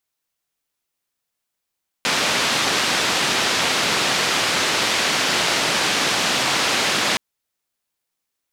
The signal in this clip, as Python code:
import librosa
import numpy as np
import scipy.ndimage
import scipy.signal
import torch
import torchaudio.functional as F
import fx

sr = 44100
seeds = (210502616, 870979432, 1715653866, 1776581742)

y = fx.band_noise(sr, seeds[0], length_s=5.12, low_hz=150.0, high_hz=4400.0, level_db=-20.0)